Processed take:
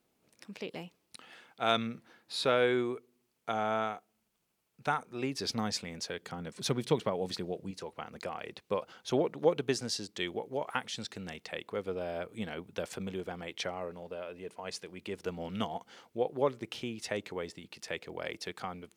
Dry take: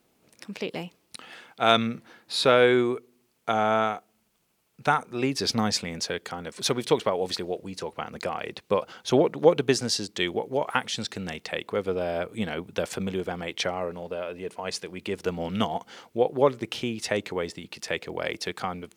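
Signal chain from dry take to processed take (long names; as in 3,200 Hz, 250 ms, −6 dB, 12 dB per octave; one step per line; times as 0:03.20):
0:06.19–0:07.71: parametric band 150 Hz +9 dB 1.6 octaves
level −8.5 dB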